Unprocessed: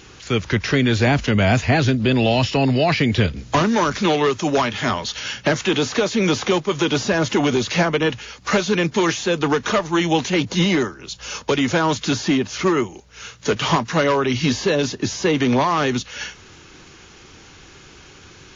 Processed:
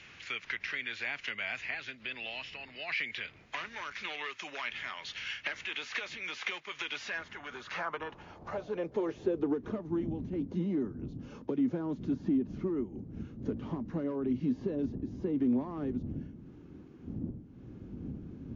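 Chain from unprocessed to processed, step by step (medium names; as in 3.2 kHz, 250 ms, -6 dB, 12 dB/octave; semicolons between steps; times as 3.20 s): wind noise 92 Hz -20 dBFS; compression 6:1, threshold -23 dBFS, peak gain reduction 17 dB; band-pass sweep 2.2 kHz -> 260 Hz, 7.04–9.82 s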